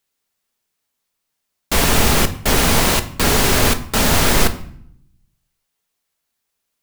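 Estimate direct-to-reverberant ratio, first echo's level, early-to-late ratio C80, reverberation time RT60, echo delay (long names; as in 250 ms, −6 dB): 8.0 dB, no echo audible, 17.5 dB, 0.60 s, no echo audible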